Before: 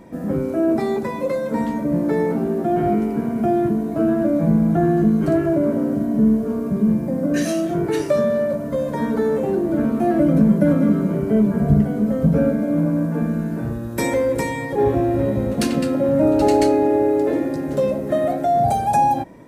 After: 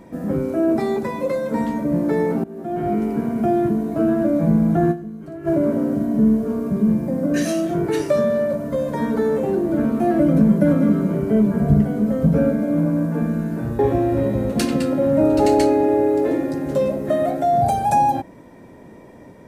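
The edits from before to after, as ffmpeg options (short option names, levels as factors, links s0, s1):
-filter_complex "[0:a]asplit=5[s0][s1][s2][s3][s4];[s0]atrim=end=2.44,asetpts=PTS-STARTPTS,afade=t=out:st=2.436:d=0.004:c=hsin:silence=0.112202[s5];[s1]atrim=start=2.44:end=5.15,asetpts=PTS-STARTPTS,afade=t=in:d=0.66:silence=0.112202,afade=t=out:st=2.47:d=0.24:c=exp:silence=0.149624[s6];[s2]atrim=start=5.15:end=5.24,asetpts=PTS-STARTPTS,volume=0.15[s7];[s3]atrim=start=5.24:end=13.792,asetpts=PTS-STARTPTS,afade=t=in:d=0.24:c=exp:silence=0.149624[s8];[s4]atrim=start=14.808[s9];[s5][s6][s7][s8]concat=n=4:v=0:a=1[s10];[s10][s9]acrossfade=d=0.004:c1=hsin:c2=hsin"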